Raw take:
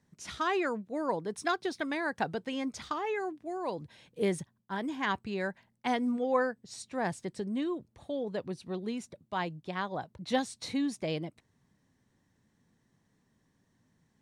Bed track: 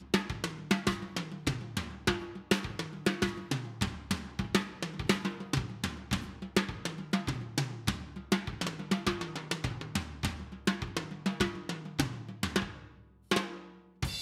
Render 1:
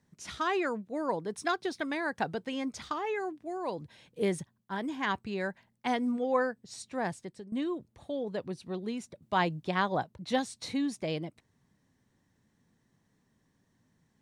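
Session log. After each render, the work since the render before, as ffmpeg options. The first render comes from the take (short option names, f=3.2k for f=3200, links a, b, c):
-filter_complex "[0:a]asettb=1/sr,asplit=3[a][b][c];[a]atrim=end=9.224[d];[b]atrim=start=9.22:end=10.03,asetpts=PTS-STARTPTS,afade=t=in:d=0.004:c=qsin,afade=t=out:st=0.806:d=0.004:c=qsin,acontrast=50[e];[c]atrim=start=10.026[f];[d][e]acrossfade=d=0.004:c1=hsin:c2=qsin[g];[g][f]acrossfade=d=0.004:c1=qsin:c2=hsin,asplit=2[h][i];[h]atrim=end=7.52,asetpts=PTS-STARTPTS,afade=t=out:st=6.99:d=0.53:silence=0.188365[j];[i]atrim=start=7.52,asetpts=PTS-STARTPTS,afade=t=in:d=0.004:c=hsin:silence=0.188365[k];[j][k]concat=n=2:v=0:a=1"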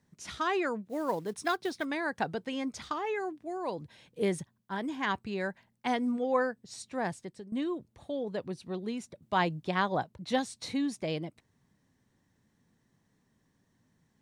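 -filter_complex "[0:a]asettb=1/sr,asplit=3[a][b][c];[a]atrim=end=0.874[d];[b]atrim=start=0.87:end=1.85,asetpts=PTS-STARTPTS,afade=t=in:d=0.004:c=qsin,afade=t=out:st=0.976:d=0.004:c=qsin,acrusher=bits=6:mode=log:mix=0:aa=0.000001[e];[c]atrim=start=1.846[f];[d][e]acrossfade=d=0.004:c1=hsin:c2=qsin[g];[g][f]acrossfade=d=0.004:c1=qsin:c2=hsin"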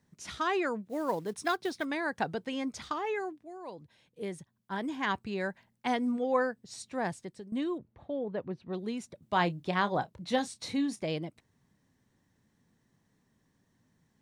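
-filter_complex "[0:a]asettb=1/sr,asplit=3[a][b][c];[a]atrim=end=7.784[d];[b]atrim=start=7.78:end=8.73,asetpts=PTS-STARTPTS,afade=t=in:d=0.004:c=qsin,afade=t=out:st=0.946:d=0.004:c=qsin,lowpass=2.1k[e];[c]atrim=start=8.726[f];[d][e]acrossfade=d=0.004:c1=hsin:c2=qsin[g];[g][f]acrossfade=d=0.004:c1=qsin:c2=hsin,asettb=1/sr,asplit=3[h][i][j];[h]atrim=end=9.264[k];[i]atrim=start=9.26:end=11.02,asetpts=PTS-STARTPTS,afade=t=in:d=0.004:c=qsin,afade=t=out:st=1.756:d=0.004:c=qsin,asplit=2[l][m];[m]adelay=29,volume=-13dB[n];[l][n]amix=inputs=2:normalize=0,atrim=end_sample=77616[o];[j]atrim=start=11.016[p];[k][o]acrossfade=d=0.004:c1=hsin:c2=qsin[q];[q][p]acrossfade=d=0.004:c1=qsin:c2=hsin,asplit=3[r][s][t];[r]atrim=end=3.48,asetpts=PTS-STARTPTS,afade=t=out:st=3.18:d=0.3:silence=0.375837[u];[s]atrim=start=3.48:end=4.42,asetpts=PTS-STARTPTS,volume=-8.5dB[v];[t]atrim=start=4.42,asetpts=PTS-STARTPTS,afade=t=in:d=0.3:silence=0.375837[w];[u][v][w]concat=n=3:v=0:a=1"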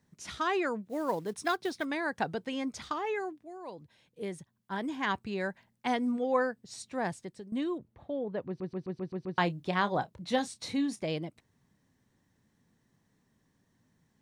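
-filter_complex "[0:a]asplit=8[a][b][c][d][e][f][g][h];[a]atrim=end=8.602[i];[b]atrim=start=8.468:end=8.602[j];[c]atrim=start=8.468:end=8.602[k];[d]atrim=start=8.468:end=8.602[l];[e]atrim=start=8.468:end=8.602[m];[f]atrim=start=8.468:end=8.602[n];[g]atrim=start=8.468:end=8.602[o];[h]atrim=start=9.378[p];[i][j]acrossfade=d=0.004:c1=hsin:c2=hsin[q];[q][k]acrossfade=d=0.004:c1=hsin:c2=hsin[r];[r][l]acrossfade=d=0.004:c1=hsin:c2=hsin[s];[s][m]acrossfade=d=0.004:c1=hsin:c2=hsin[t];[t][n]acrossfade=d=0.004:c1=hsin:c2=hsin[u];[u][o]acrossfade=d=0.004:c1=hsin:c2=hsin[v];[v][p]acrossfade=d=0.004:c1=hsin:c2=hsin"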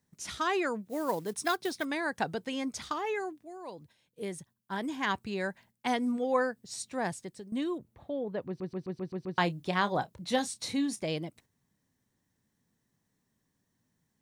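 -af "agate=range=-7dB:threshold=-59dB:ratio=16:detection=peak,highshelf=f=6.4k:g=10"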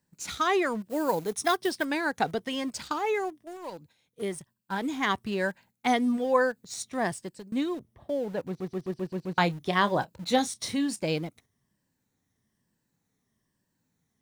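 -filter_complex "[0:a]afftfilt=real='re*pow(10,6/40*sin(2*PI*(1.3*log(max(b,1)*sr/1024/100)/log(2)-(-1.1)*(pts-256)/sr)))':imag='im*pow(10,6/40*sin(2*PI*(1.3*log(max(b,1)*sr/1024/100)/log(2)-(-1.1)*(pts-256)/sr)))':win_size=1024:overlap=0.75,asplit=2[a][b];[b]aeval=exprs='val(0)*gte(abs(val(0)),0.00944)':c=same,volume=-6dB[c];[a][c]amix=inputs=2:normalize=0"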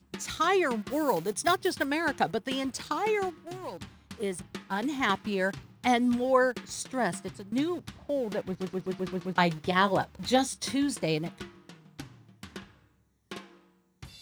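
-filter_complex "[1:a]volume=-12.5dB[a];[0:a][a]amix=inputs=2:normalize=0"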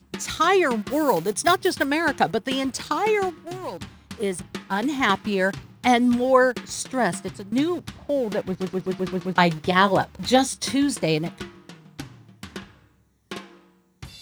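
-af "volume=6.5dB"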